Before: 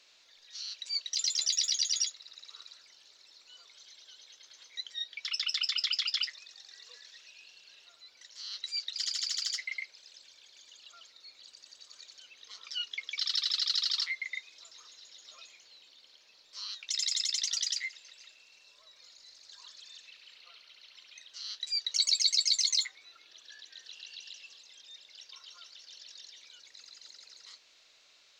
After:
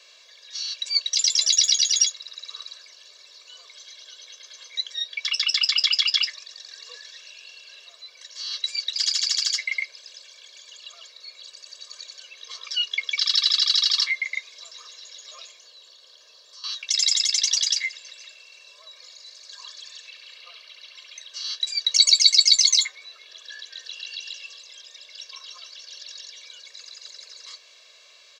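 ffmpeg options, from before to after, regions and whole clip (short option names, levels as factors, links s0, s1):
-filter_complex "[0:a]asettb=1/sr,asplit=3[s0][s1][s2];[s0]atrim=end=15.514[s3];[s1]atrim=start=15.51:end=16.64,asetpts=PTS-STARTPTS,afade=t=in:d=0.004:c=qsin,afade=t=out:st=1.126:d=0.004:c=qsin,highpass=58,equalizer=f=2300:w=3.5:g=-10,acompressor=threshold=0.00158:ratio=2.5:attack=3.2:release=140:knee=1:detection=peak[s4];[s2]atrim=start=16.636[s5];[s3][s4]acrossfade=d=0.004:c1=hsin:c2=qsin[s6];[s6][s5]acrossfade=d=0.004:c1=qsin:c2=hsin,highpass=250,equalizer=f=15000:w=2.2:g=-8.5,aecho=1:1:1.8:0.95,volume=2.37"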